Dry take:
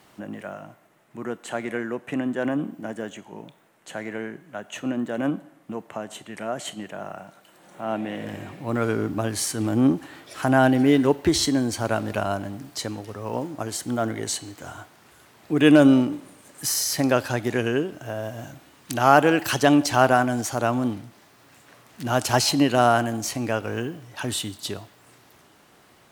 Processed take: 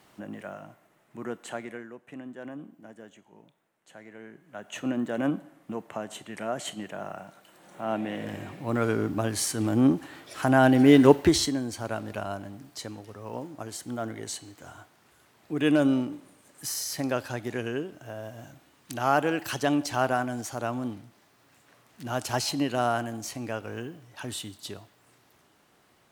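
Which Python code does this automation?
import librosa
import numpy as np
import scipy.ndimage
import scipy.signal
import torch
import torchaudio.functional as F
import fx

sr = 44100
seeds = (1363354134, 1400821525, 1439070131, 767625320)

y = fx.gain(x, sr, db=fx.line((1.46, -4.0), (1.92, -15.0), (4.15, -15.0), (4.78, -2.0), (10.6, -2.0), (11.13, 4.0), (11.59, -8.0)))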